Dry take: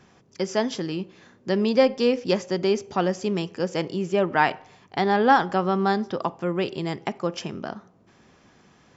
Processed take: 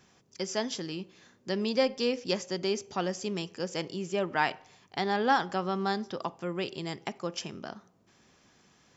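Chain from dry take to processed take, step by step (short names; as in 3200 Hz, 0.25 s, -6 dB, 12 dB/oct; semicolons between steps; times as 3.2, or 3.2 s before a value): high shelf 3300 Hz +11 dB; gain -8.5 dB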